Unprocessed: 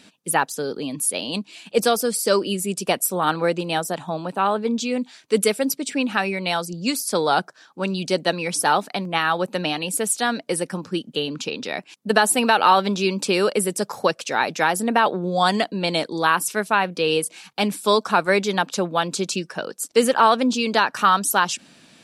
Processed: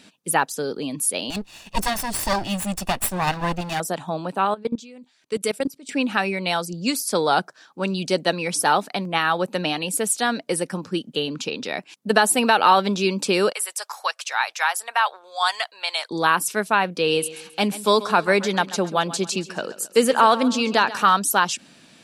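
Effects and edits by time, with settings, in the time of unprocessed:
0:01.30–0:03.80: lower of the sound and its delayed copy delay 1.1 ms
0:04.45–0:05.89: output level in coarse steps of 21 dB
0:13.52–0:16.11: high-pass filter 850 Hz 24 dB per octave
0:16.99–0:21.13: repeating echo 135 ms, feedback 42%, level −16 dB

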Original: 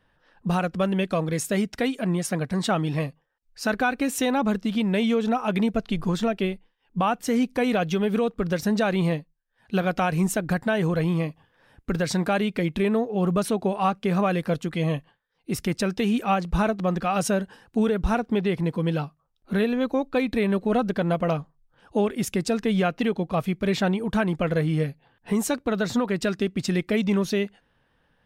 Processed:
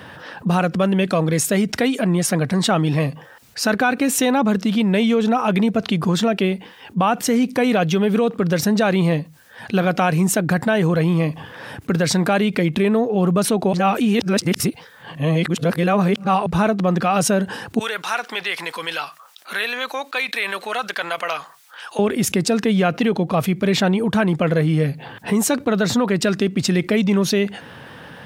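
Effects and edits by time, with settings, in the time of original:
0:13.73–0:16.46: reverse
0:17.79–0:21.99: high-pass filter 1,400 Hz
whole clip: high-pass filter 91 Hz 24 dB per octave; envelope flattener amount 50%; level +4 dB

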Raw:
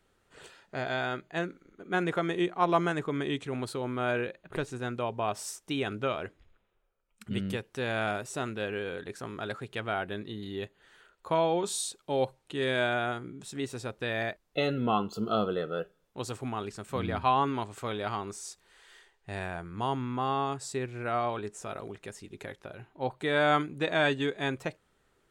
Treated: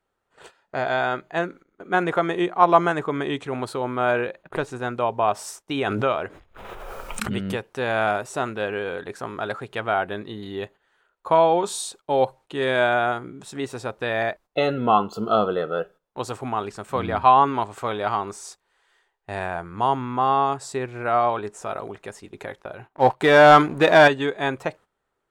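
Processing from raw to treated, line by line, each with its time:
0:05.72–0:07.67: background raised ahead of every attack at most 23 dB per second
0:22.89–0:24.08: leveller curve on the samples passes 2
whole clip: parametric band 870 Hz +9 dB 1.9 octaves; noise gate −46 dBFS, range −14 dB; level +2.5 dB

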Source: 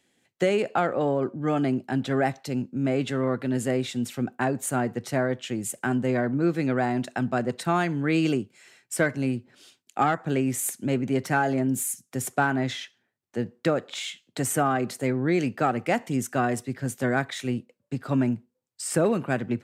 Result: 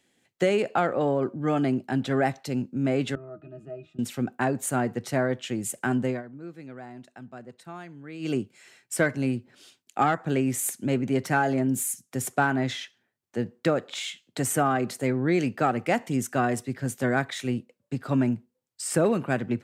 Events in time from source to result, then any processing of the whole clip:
0:03.15–0:03.99: resonances in every octave D#, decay 0.13 s
0:06.04–0:08.38: duck −17 dB, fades 0.19 s

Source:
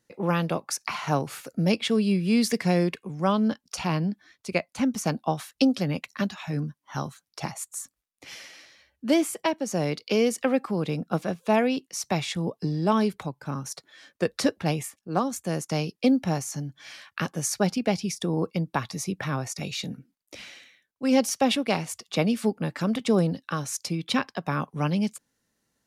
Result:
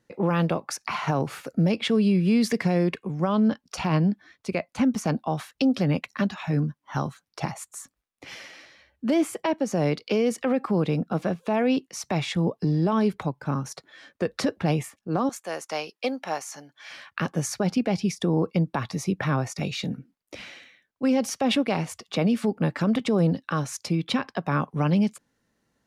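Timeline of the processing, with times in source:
0:15.29–0:16.91: high-pass filter 680 Hz
whole clip: high-shelf EQ 4,100 Hz −11.5 dB; brickwall limiter −19.5 dBFS; level +5 dB

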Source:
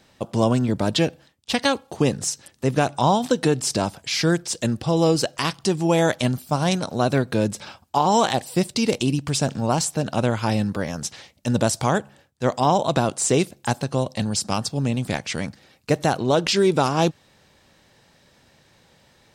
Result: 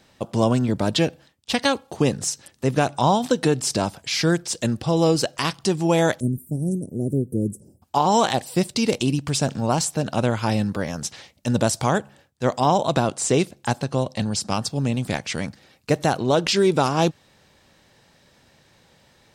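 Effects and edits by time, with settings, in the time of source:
0:06.20–0:07.82: elliptic band-stop filter 390–9,300 Hz, stop band 50 dB
0:13.00–0:14.62: high-shelf EQ 11,000 Hz −8.5 dB

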